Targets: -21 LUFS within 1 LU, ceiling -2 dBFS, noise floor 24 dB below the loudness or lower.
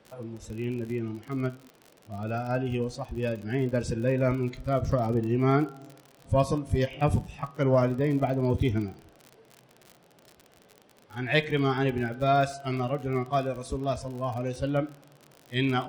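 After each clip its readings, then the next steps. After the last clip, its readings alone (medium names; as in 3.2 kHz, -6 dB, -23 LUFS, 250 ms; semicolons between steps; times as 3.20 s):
tick rate 53 per s; loudness -28.5 LUFS; peak level -10.5 dBFS; loudness target -21.0 LUFS
-> de-click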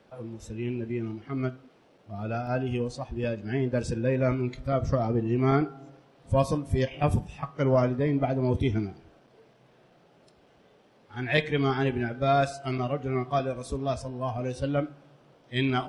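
tick rate 0.063 per s; loudness -28.5 LUFS; peak level -10.5 dBFS; loudness target -21.0 LUFS
-> trim +7.5 dB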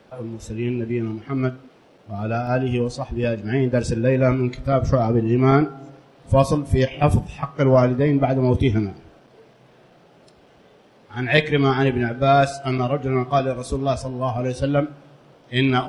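loudness -21.0 LUFS; peak level -3.0 dBFS; noise floor -53 dBFS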